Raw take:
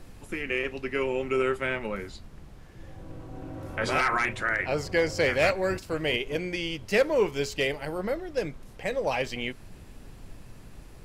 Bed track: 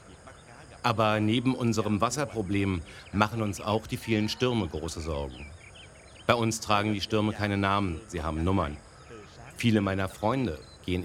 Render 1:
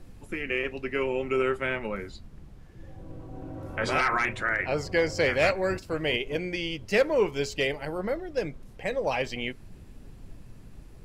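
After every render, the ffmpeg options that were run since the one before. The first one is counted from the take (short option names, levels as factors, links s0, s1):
-af "afftdn=nr=6:nf=-48"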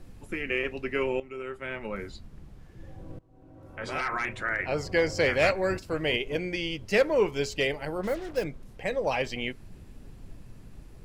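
-filter_complex "[0:a]asettb=1/sr,asplit=3[s0][s1][s2];[s0]atrim=end=8.034[s3];[s1]atrim=start=8.03:end=8.44,asetpts=PTS-STARTPTS,afade=t=in:d=0.004:c=qsin,afade=t=out:st=0.406:d=0.004:c=qsin,acrusher=bits=6:mix=0:aa=0.5[s4];[s2]atrim=start=8.436[s5];[s3][s4]acrossfade=d=0.004:c1=hsin:c2=qsin[s6];[s6][s5]acrossfade=d=0.004:c1=qsin:c2=hsin,asplit=3[s7][s8][s9];[s7]atrim=end=1.2,asetpts=PTS-STARTPTS,afade=t=out:st=1.196:d=0.004:c=hsin:silence=0.199526[s10];[s8]atrim=start=1.2:end=3.19,asetpts=PTS-STARTPTS,afade=t=in:d=0.84:c=qua:silence=0.199526,afade=t=out:st=1.986:d=0.004:c=hsin:silence=0.0668344[s11];[s9]atrim=start=3.19,asetpts=PTS-STARTPTS,afade=t=in:d=1.78:silence=0.0668344[s12];[s10][s11][s12]concat=n=3:v=0:a=1"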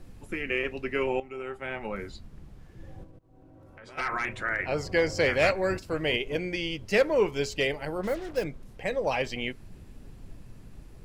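-filter_complex "[0:a]asettb=1/sr,asplit=3[s0][s1][s2];[s0]atrim=end=1.074[s3];[s1]atrim=start=1.07:end=1.92,asetpts=PTS-STARTPTS,afade=t=in:d=0.004:c=qsin,afade=t=out:st=0.846:d=0.004:c=qsin,equalizer=f=780:t=o:w=0.21:g=12.5[s4];[s2]atrim=start=1.916[s5];[s3][s4]acrossfade=d=0.004:c1=hsin:c2=qsin[s6];[s6][s5]acrossfade=d=0.004:c1=qsin:c2=hsin,asplit=3[s7][s8][s9];[s7]afade=t=out:st=3.03:d=0.02[s10];[s8]acompressor=threshold=0.00355:ratio=3:attack=3.2:release=140:knee=1:detection=peak,afade=t=in:st=3.03:d=0.02,afade=t=out:st=3.97:d=0.02[s11];[s9]afade=t=in:st=3.97:d=0.02[s12];[s10][s11][s12]amix=inputs=3:normalize=0"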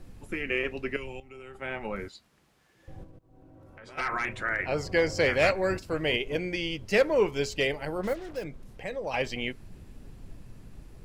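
-filter_complex "[0:a]asettb=1/sr,asplit=3[s0][s1][s2];[s0]atrim=end=0.964[s3];[s1]atrim=start=0.96:end=1.55,asetpts=PTS-STARTPTS,afade=t=in:d=0.004:c=qsin,afade=t=out:st=0.586:d=0.004:c=qsin,acrossover=split=150|3000[s4][s5][s6];[s5]acompressor=threshold=0.00282:ratio=2:attack=3.2:release=140:knee=2.83:detection=peak[s7];[s4][s7][s6]amix=inputs=3:normalize=0[s8];[s2]atrim=start=1.546[s9];[s3][s8]acrossfade=d=0.004:c1=hsin:c2=qsin[s10];[s10][s9]acrossfade=d=0.004:c1=qsin:c2=hsin,asettb=1/sr,asplit=3[s11][s12][s13];[s11]atrim=end=2.084[s14];[s12]atrim=start=2.08:end=2.88,asetpts=PTS-STARTPTS,afade=t=in:d=0.004:c=qsin,afade=t=out:st=0.796:d=0.004:c=qsin,highpass=f=1400:p=1[s15];[s13]atrim=start=2.876[s16];[s14][s15]acrossfade=d=0.004:c1=hsin:c2=qsin[s17];[s17][s16]acrossfade=d=0.004:c1=qsin:c2=hsin,asettb=1/sr,asplit=3[s18][s19][s20];[s18]atrim=end=8.134[s21];[s19]atrim=start=8.13:end=9.14,asetpts=PTS-STARTPTS,afade=t=in:d=0.004:c=qsin,afade=t=out:st=1.006:d=0.004:c=qsin,acompressor=threshold=0.01:ratio=1.5:attack=3.2:release=140:knee=1:detection=peak[s22];[s20]atrim=start=9.136[s23];[s21][s22]acrossfade=d=0.004:c1=hsin:c2=qsin[s24];[s24][s23]acrossfade=d=0.004:c1=qsin:c2=hsin"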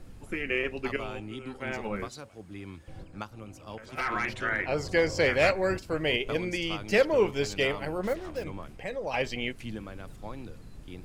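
-filter_complex "[1:a]volume=0.178[s0];[0:a][s0]amix=inputs=2:normalize=0"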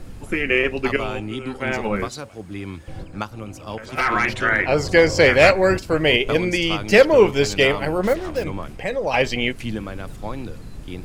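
-af "volume=3.35"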